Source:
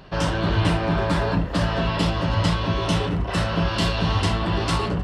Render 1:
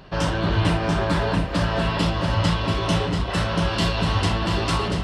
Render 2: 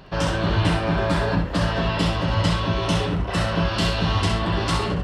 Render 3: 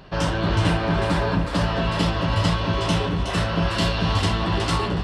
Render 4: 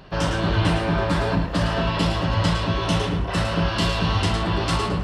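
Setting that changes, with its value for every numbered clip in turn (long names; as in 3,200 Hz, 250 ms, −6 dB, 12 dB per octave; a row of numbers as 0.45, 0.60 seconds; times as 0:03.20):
feedback echo with a high-pass in the loop, delay time: 687, 65, 368, 108 milliseconds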